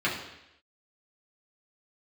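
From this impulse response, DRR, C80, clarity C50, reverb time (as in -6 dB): -6.5 dB, 8.5 dB, 5.5 dB, 0.85 s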